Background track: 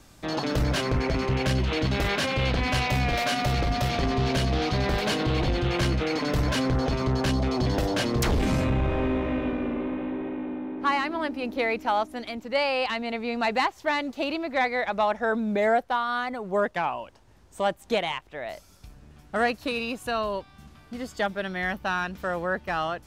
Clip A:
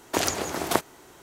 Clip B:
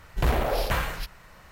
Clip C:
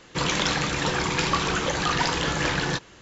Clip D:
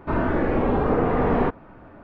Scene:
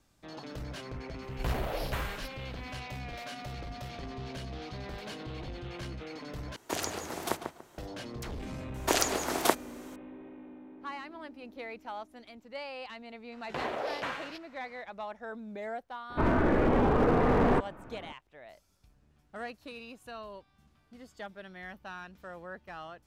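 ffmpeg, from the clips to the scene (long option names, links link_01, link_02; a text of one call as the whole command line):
ffmpeg -i bed.wav -i cue0.wav -i cue1.wav -i cue2.wav -i cue3.wav -filter_complex "[2:a]asplit=2[link_01][link_02];[1:a]asplit=2[link_03][link_04];[0:a]volume=-16dB[link_05];[link_03]asplit=2[link_06][link_07];[link_07]adelay=144,lowpass=frequency=2100:poles=1,volume=-6dB,asplit=2[link_08][link_09];[link_09]adelay=144,lowpass=frequency=2100:poles=1,volume=0.25,asplit=2[link_10][link_11];[link_11]adelay=144,lowpass=frequency=2100:poles=1,volume=0.25[link_12];[link_06][link_08][link_10][link_12]amix=inputs=4:normalize=0[link_13];[link_04]highpass=230[link_14];[link_02]highpass=260,lowpass=5200[link_15];[4:a]asoftclip=type=hard:threshold=-17.5dB[link_16];[link_05]asplit=2[link_17][link_18];[link_17]atrim=end=6.564[link_19];[link_13]atrim=end=1.22,asetpts=PTS-STARTPTS,volume=-9dB[link_20];[link_18]atrim=start=7.776[link_21];[link_01]atrim=end=1.51,asetpts=PTS-STARTPTS,volume=-9dB,afade=type=in:duration=0.004:curve=hsin,afade=type=out:start_time=1.506:duration=0.004:curve=hsin,adelay=1220[link_22];[link_14]atrim=end=1.22,asetpts=PTS-STARTPTS,volume=-1.5dB,afade=type=in:duration=0.004:curve=hsin,afade=type=out:start_time=1.216:duration=0.004:curve=hsin,adelay=385434S[link_23];[link_15]atrim=end=1.51,asetpts=PTS-STARTPTS,volume=-7dB,afade=type=in:duration=0.004:curve=hsin,afade=type=out:start_time=1.506:duration=0.004:curve=hsin,adelay=587412S[link_24];[link_16]atrim=end=2.03,asetpts=PTS-STARTPTS,volume=-2.5dB,afade=type=in:duration=0.004:curve=hsin,afade=type=out:start_time=2.026:duration=0.004:curve=hsin,adelay=16100[link_25];[link_19][link_20]acrossfade=duration=0.004:curve1=hsin:curve2=hsin[link_26];[link_26][link_21]acrossfade=duration=0.004:curve1=hsin:curve2=hsin[link_27];[link_27][link_22][link_23][link_24][link_25]amix=inputs=5:normalize=0" out.wav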